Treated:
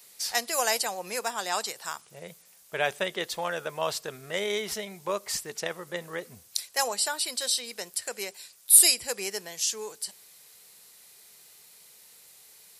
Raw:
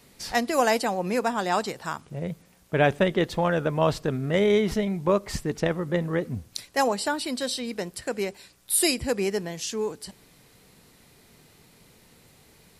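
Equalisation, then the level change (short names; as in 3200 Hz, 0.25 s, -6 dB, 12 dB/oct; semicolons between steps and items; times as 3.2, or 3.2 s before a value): tone controls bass -8 dB, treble +5 dB; tilt +2.5 dB/oct; bell 280 Hz -11 dB 0.31 oct; -5.0 dB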